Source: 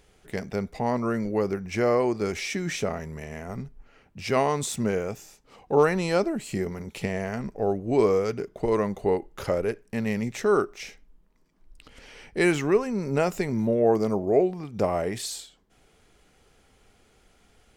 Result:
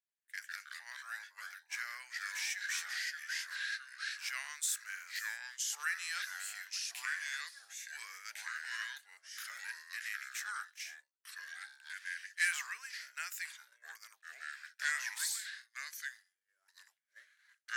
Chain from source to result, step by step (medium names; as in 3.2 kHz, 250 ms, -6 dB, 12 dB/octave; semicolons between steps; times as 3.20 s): differentiator; ever faster or slower copies 91 ms, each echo -3 st, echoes 2; ladder high-pass 1.5 kHz, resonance 70%; expander -56 dBFS; trim +9 dB